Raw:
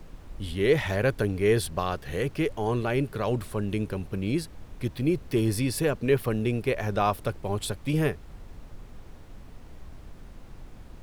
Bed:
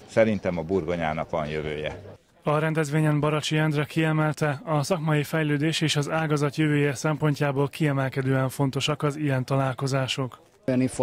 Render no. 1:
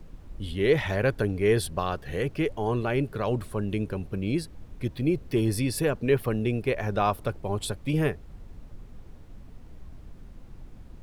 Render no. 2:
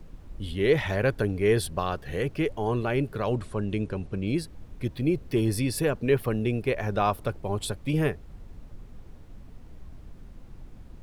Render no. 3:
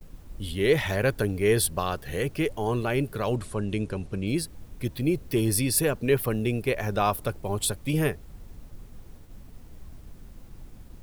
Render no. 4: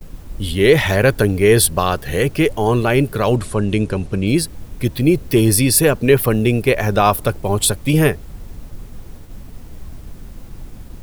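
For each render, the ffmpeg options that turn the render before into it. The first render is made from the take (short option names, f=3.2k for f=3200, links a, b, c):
-af "afftdn=nr=6:nf=-47"
-filter_complex "[0:a]asettb=1/sr,asplit=3[a][b][c];[a]atrim=end=3.364[d];[b]atrim=start=3.36:end=4.27,asetpts=PTS-STARTPTS,afade=t=in:d=0.004:c=qsin,afade=t=out:st=0.906:d=0.004:c=qsin,lowpass=f=9.3k:w=0.5412,lowpass=f=9.3k:w=1.3066[e];[c]atrim=start=4.266[f];[d][e]acrossfade=d=0.004:c1=hsin:c2=qsin[g];[g][f]acrossfade=d=0.004:c1=qsin:c2=hsin"
-af "aemphasis=mode=production:type=50kf,agate=range=-33dB:threshold=-43dB:ratio=3:detection=peak"
-af "volume=11dB,alimiter=limit=-2dB:level=0:latency=1"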